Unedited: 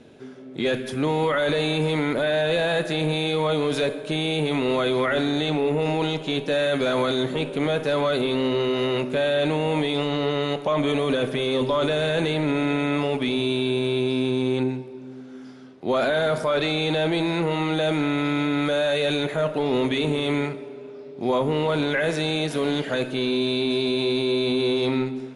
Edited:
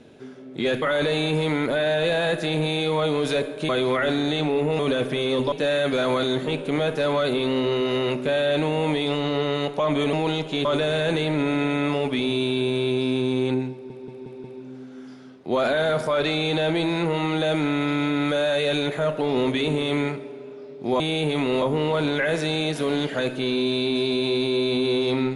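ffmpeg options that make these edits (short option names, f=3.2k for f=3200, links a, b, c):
-filter_complex "[0:a]asplit=13[a][b][c][d][e][f][g][h][i][j][k][l][m];[a]atrim=end=0.822[n];[b]atrim=start=1.288:end=4.162[o];[c]atrim=start=4.778:end=5.882[p];[d]atrim=start=11.008:end=11.742[q];[e]atrim=start=6.398:end=11.012[r];[f]atrim=start=5.878:end=6.402[s];[g]atrim=start=11.738:end=14.992[t];[h]atrim=start=14.808:end=14.992[u];[i]atrim=start=14.808:end=14.992[v];[j]atrim=start=14.808:end=14.992[w];[k]atrim=start=14.808:end=21.372[x];[l]atrim=start=4.158:end=4.782[y];[m]atrim=start=21.368[z];[n][o]acrossfade=d=0.004:c1=hsin:c2=hsin[aa];[aa][p]acrossfade=d=0.004:c1=hsin:c2=hsin[ab];[ab][q]acrossfade=d=0.004:c1=hsin:c2=hsin[ac];[ac][r]acrossfade=d=0.004:c1=hsin:c2=hsin[ad];[ad][s]acrossfade=d=0.004:c1=hsin:c2=hsin[ae];[ae][t]acrossfade=d=0.004:c1=hsin:c2=hsin[af];[af][u]acrossfade=d=0.004:c1=hsin:c2=hsin[ag];[ag][v]acrossfade=d=0.004:c1=hsin:c2=hsin[ah];[ah][w]acrossfade=d=0.004:c1=hsin:c2=hsin[ai];[ai][x]acrossfade=d=0.004:c1=hsin:c2=hsin[aj];[aj][y]acrossfade=d=0.004:c1=hsin:c2=hsin[ak];[ak][z]acrossfade=d=0.004:c1=hsin:c2=hsin"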